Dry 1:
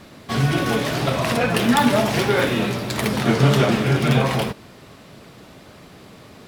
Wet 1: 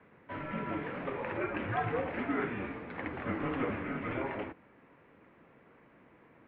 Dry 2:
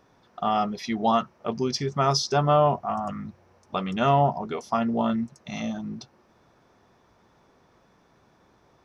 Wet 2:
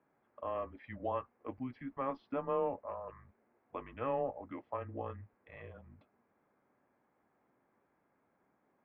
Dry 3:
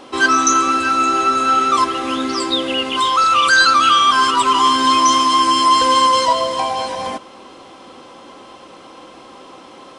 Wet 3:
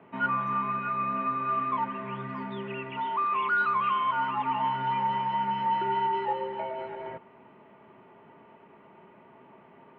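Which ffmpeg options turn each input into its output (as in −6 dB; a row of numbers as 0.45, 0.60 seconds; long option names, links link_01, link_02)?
-af "highpass=frequency=330:width_type=q:width=0.5412,highpass=frequency=330:width_type=q:width=1.307,lowpass=frequency=2400:width_type=q:width=0.5176,lowpass=frequency=2400:width_type=q:width=0.7071,lowpass=frequency=2400:width_type=q:width=1.932,afreqshift=-130,equalizer=frequency=750:width=0.35:gain=-5,volume=-9dB"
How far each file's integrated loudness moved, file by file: −16.5, −15.0, −15.0 LU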